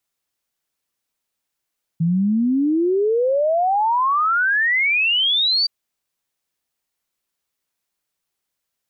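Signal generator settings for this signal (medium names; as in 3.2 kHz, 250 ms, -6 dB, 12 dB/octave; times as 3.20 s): log sweep 160 Hz -> 4.7 kHz 3.67 s -15 dBFS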